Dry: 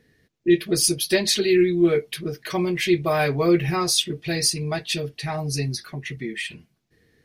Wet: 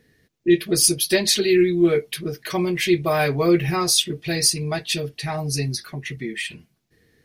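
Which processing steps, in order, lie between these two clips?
high shelf 7900 Hz +5 dB; gain +1 dB

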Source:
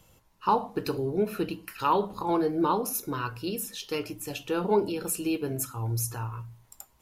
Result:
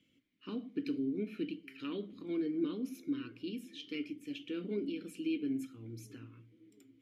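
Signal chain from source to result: vowel filter i; dark delay 0.672 s, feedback 63%, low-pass 800 Hz, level -24 dB; gain +4 dB

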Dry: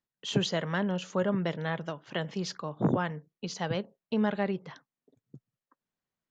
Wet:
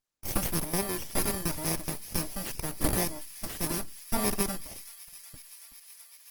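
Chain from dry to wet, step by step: FFT order left unsorted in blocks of 32 samples; high shelf 6900 Hz +8.5 dB; short-mantissa float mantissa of 8-bit; small resonant body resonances 460/960/2100 Hz, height 12 dB, ringing for 80 ms; full-wave rectifier; on a send: thin delay 0.374 s, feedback 84%, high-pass 2400 Hz, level -16 dB; on the sum: Opus 20 kbps 48000 Hz

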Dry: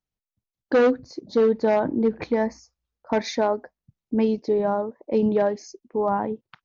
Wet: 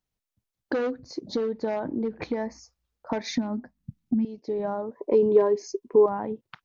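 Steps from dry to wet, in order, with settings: 3.3–4.25 resonant low shelf 330 Hz +10.5 dB, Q 3; compressor 5:1, threshold -30 dBFS, peak gain reduction 23.5 dB; 4.97–6.06 small resonant body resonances 410/1000 Hz, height 14 dB; gain +3.5 dB

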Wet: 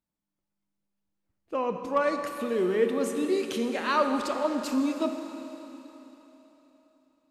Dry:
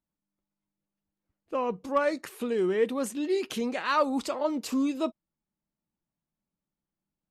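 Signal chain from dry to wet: high shelf 10000 Hz -4 dB; Schroeder reverb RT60 3.7 s, combs from 27 ms, DRR 5.5 dB

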